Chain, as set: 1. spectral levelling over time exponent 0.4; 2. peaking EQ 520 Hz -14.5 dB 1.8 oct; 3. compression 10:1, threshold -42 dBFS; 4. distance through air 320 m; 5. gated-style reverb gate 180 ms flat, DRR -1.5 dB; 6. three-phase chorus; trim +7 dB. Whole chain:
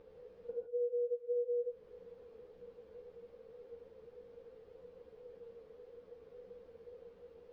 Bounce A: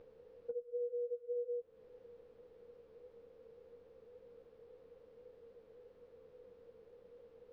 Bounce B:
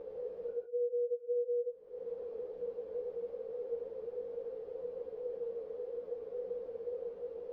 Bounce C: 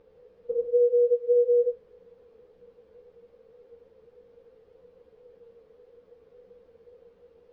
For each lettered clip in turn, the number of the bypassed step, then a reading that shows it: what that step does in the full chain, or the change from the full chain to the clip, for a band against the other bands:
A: 5, loudness change -2.5 LU; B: 2, crest factor change -3.0 dB; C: 3, mean gain reduction 4.0 dB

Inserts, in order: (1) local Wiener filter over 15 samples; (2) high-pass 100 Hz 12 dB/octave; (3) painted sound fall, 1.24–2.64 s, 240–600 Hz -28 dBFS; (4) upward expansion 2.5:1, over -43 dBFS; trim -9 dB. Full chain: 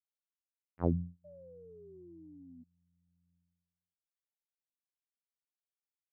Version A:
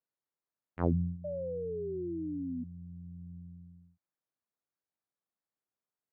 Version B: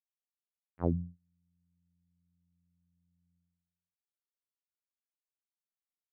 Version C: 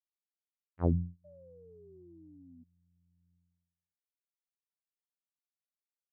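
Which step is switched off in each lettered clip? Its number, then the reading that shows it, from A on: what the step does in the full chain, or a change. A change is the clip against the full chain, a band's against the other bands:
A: 4, 500 Hz band +4.0 dB; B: 3, momentary loudness spread change -11 LU; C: 2, 125 Hz band +3.5 dB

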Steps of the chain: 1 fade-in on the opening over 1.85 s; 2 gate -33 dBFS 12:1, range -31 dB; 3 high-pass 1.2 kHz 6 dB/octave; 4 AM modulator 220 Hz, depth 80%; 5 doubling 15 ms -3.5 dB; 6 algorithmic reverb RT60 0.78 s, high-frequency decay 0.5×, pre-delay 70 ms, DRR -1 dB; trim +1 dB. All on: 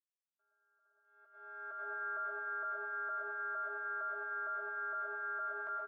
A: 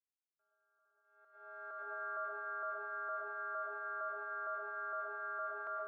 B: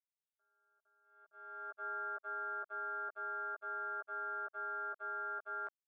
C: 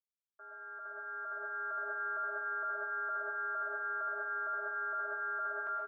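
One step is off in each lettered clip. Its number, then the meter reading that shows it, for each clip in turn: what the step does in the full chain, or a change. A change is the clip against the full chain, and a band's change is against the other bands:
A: 5, loudness change -2.0 LU; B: 6, loudness change -2.0 LU; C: 2, momentary loudness spread change +4 LU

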